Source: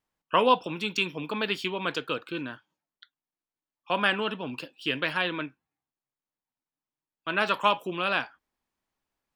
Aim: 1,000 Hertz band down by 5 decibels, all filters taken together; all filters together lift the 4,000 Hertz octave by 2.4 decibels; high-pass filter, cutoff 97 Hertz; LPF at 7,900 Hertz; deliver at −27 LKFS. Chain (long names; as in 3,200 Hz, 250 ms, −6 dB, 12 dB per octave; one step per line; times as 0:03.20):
high-pass filter 97 Hz
low-pass filter 7,900 Hz
parametric band 1,000 Hz −6 dB
parametric band 4,000 Hz +4 dB
level +1.5 dB